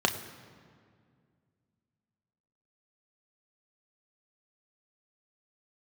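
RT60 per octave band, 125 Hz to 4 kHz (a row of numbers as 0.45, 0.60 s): 3.0, 2.8, 2.2, 2.0, 1.7, 1.4 s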